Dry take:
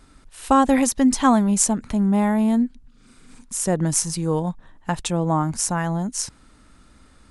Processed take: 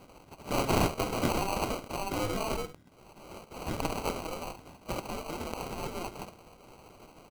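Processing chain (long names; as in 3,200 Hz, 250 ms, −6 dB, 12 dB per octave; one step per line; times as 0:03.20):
gate on every frequency bin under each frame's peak −25 dB weak
ambience of single reflections 50 ms −12 dB, 70 ms −12.5 dB
decimation without filtering 25×
level +9 dB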